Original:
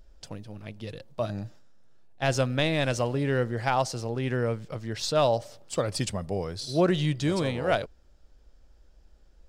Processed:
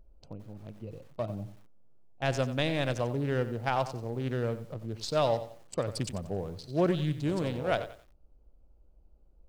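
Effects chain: local Wiener filter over 25 samples; bit-crushed delay 91 ms, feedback 35%, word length 8-bit, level -12.5 dB; trim -3.5 dB

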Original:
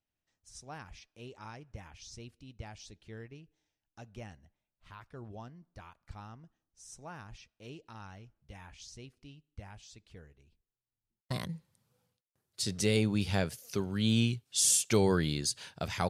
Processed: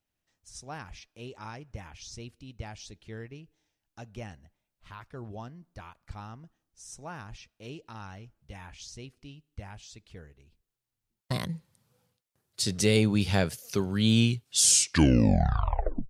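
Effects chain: tape stop on the ending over 1.51 s; trim +5 dB

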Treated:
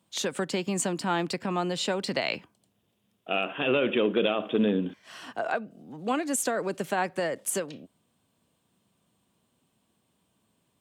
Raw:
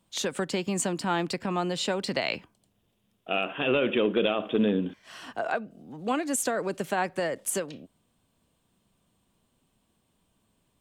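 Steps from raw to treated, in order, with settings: high-pass 97 Hz

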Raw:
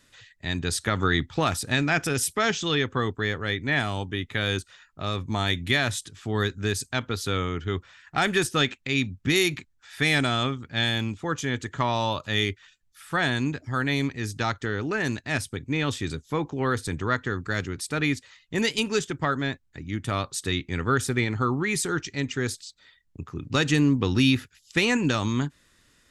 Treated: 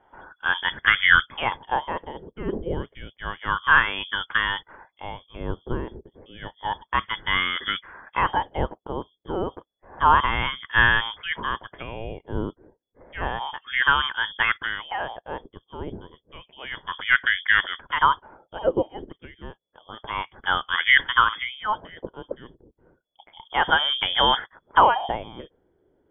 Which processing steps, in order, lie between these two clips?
4.11–4.59 s: treble shelf 2.3 kHz -9.5 dB; frequency inversion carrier 3.4 kHz; LFO low-pass sine 0.3 Hz 390–1700 Hz; trim +6 dB

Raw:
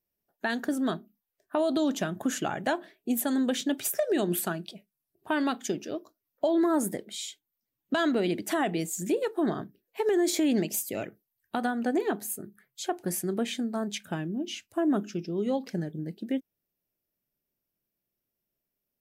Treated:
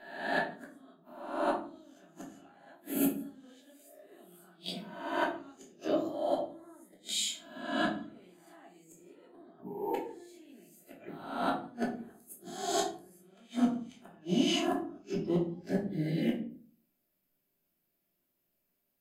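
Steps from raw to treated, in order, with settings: reverse spectral sustain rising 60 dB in 0.84 s; hum notches 50/100/150/200/250/300 Hz; time-frequency box 9.60–9.94 s, 1.1–11 kHz -30 dB; band-stop 5.7 kHz, Q 8.2; inverted gate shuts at -20 dBFS, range -35 dB; bass shelf 92 Hz -11 dB; simulated room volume 350 m³, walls furnished, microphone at 3 m; trim -1.5 dB

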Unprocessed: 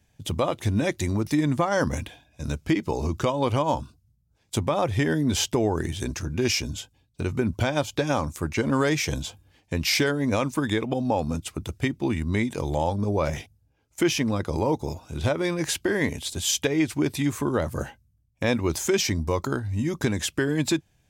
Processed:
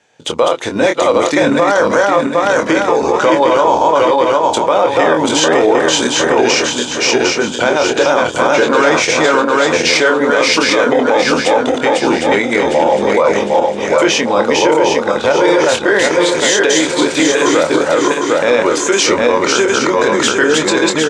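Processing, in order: backward echo that repeats 378 ms, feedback 64%, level -1 dB; cabinet simulation 390–7500 Hz, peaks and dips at 490 Hz +8 dB, 930 Hz +4 dB, 1.4 kHz +6 dB, 5.2 kHz -4 dB; doubling 25 ms -7 dB; loudness maximiser +14.5 dB; trim -1 dB

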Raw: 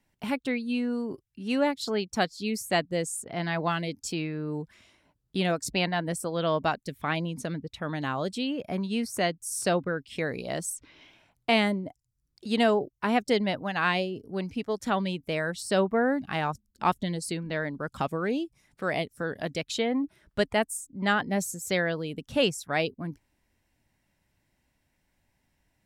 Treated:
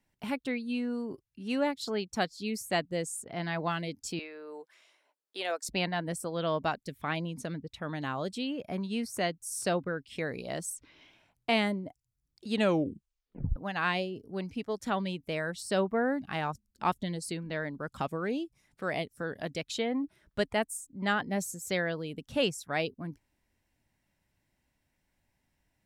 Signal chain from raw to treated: 4.19–5.69 s: high-pass 430 Hz 24 dB/octave; 12.53 s: tape stop 1.03 s; trim -4 dB

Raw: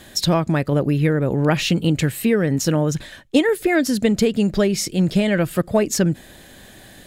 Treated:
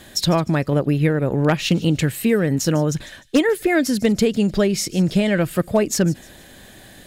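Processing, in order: 0.72–1.74 s: transient shaper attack +2 dB, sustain -7 dB; wavefolder -6 dBFS; on a send: feedback echo behind a high-pass 151 ms, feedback 33%, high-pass 3.7 kHz, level -16.5 dB

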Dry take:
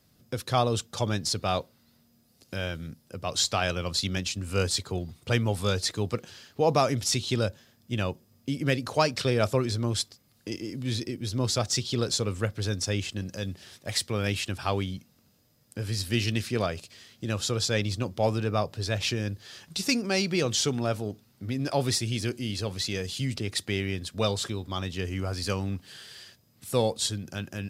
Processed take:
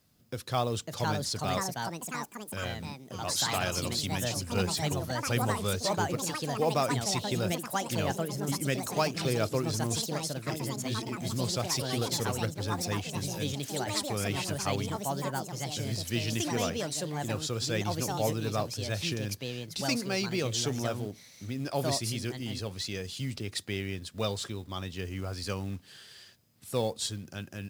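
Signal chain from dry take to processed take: companded quantiser 6-bit; ever faster or slower copies 617 ms, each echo +4 st, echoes 3; trim -5 dB

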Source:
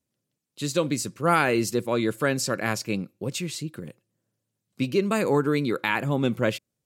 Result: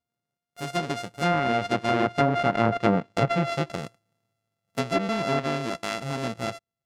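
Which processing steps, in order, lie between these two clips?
sorted samples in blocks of 64 samples; Doppler pass-by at 3.09 s, 6 m/s, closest 3.8 m; low-pass that closes with the level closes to 690 Hz, closed at -22 dBFS; trim +8 dB

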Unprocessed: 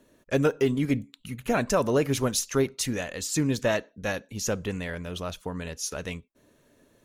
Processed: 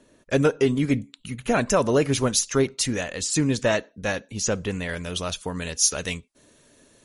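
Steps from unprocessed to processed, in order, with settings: treble shelf 3.2 kHz +2 dB, from 4.89 s +11 dB; trim +3.5 dB; MP3 48 kbps 44.1 kHz

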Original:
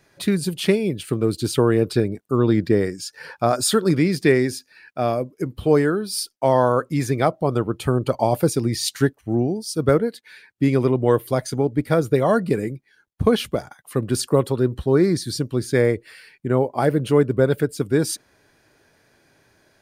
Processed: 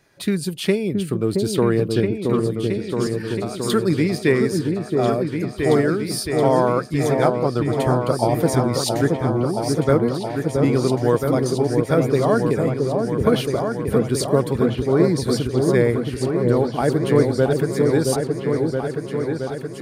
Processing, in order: 2.39–3.70 s: compression, threshold -29 dBFS, peak gain reduction 15.5 dB; delay with an opening low-pass 672 ms, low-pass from 750 Hz, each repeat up 2 oct, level -3 dB; trim -1 dB

